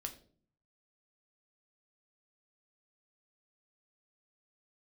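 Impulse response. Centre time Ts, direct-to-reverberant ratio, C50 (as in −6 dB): 10 ms, 4.0 dB, 13.0 dB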